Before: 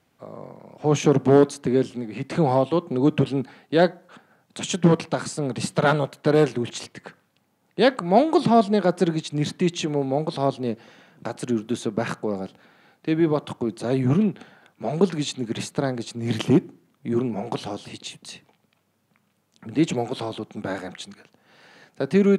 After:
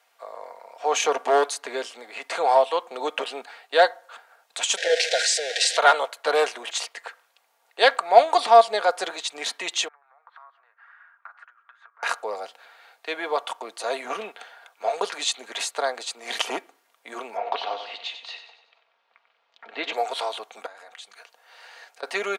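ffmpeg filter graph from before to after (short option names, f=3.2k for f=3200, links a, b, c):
-filter_complex "[0:a]asettb=1/sr,asplit=3[a][b][c];[a]atrim=end=4.774[d];[b]atrim=start=4.77:end=5.77,asetpts=PTS-STARTPTS,afade=t=in:d=0.004:c=qsin,afade=t=out:st=0.996:d=0.004:c=qsin,aeval=exprs='val(0)+0.5*0.0562*sgn(val(0))':c=same,asuperstop=centerf=1100:order=12:qfactor=1.6,highpass=f=420:w=0.5412,highpass=f=420:w=1.3066,equalizer=f=520:t=q:w=4:g=5,equalizer=f=760:t=q:w=4:g=-9,equalizer=f=1.8k:t=q:w=4:g=5,equalizer=f=3.7k:t=q:w=4:g=6,equalizer=f=5.5k:t=q:w=4:g=3,lowpass=f=8k:w=0.5412,lowpass=f=8k:w=1.3066[e];[c]atrim=start=5.766[f];[d][e]acrossfade=d=0.004:c1=hsin:c2=qsin[g];[g][f]acrossfade=d=0.004:c1=qsin:c2=hsin,asettb=1/sr,asplit=3[h][i][j];[h]atrim=end=9.884[k];[i]atrim=start=9.88:end=12.03,asetpts=PTS-STARTPTS,afade=t=in:d=0.004:c=qsin,afade=t=out:st=2.146:d=0.004:c=qsin,acompressor=threshold=-34dB:ratio=10:attack=3.2:release=140:knee=1:detection=peak,asuperpass=centerf=1400:order=4:qfactor=2.2[l];[j]atrim=start=12.026[m];[k][l]acrossfade=d=0.004:c1=hsin:c2=qsin[n];[n][m]acrossfade=d=0.004:c1=qsin:c2=hsin,asettb=1/sr,asplit=3[o][p][q];[o]atrim=end=17.374[r];[p]atrim=start=17.37:end=19.93,asetpts=PTS-STARTPTS,afade=t=in:d=0.004:c=qsin,afade=t=out:st=2.556:d=0.004:c=qsin,lowpass=f=4k:w=0.5412,lowpass=f=4k:w=1.3066,aecho=1:1:94|188|282|376|470:0.335|0.154|0.0709|0.0326|0.015,atrim=end_sample=112896[s];[q]atrim=start=19.926[t];[r][s]acrossfade=d=0.004:c1=hsin:c2=qsin[u];[u][t]acrossfade=d=0.004:c1=qsin:c2=hsin,asettb=1/sr,asplit=3[v][w][x];[v]atrim=end=20.664[y];[w]atrim=start=20.66:end=22.03,asetpts=PTS-STARTPTS,afade=t=in:d=0.004:c=qsin,afade=t=out:st=1.366:d=0.004:c=qsin,highpass=140,acompressor=threshold=-43dB:ratio=12:attack=3.2:release=140:knee=1:detection=peak[z];[x]atrim=start=22.026[aa];[y][z]acrossfade=d=0.004:c1=hsin:c2=qsin[ab];[ab][aa]acrossfade=d=0.004:c1=qsin:c2=hsin,highpass=f=620:w=0.5412,highpass=f=620:w=1.3066,aecho=1:1:4.3:0.39,volume=5dB"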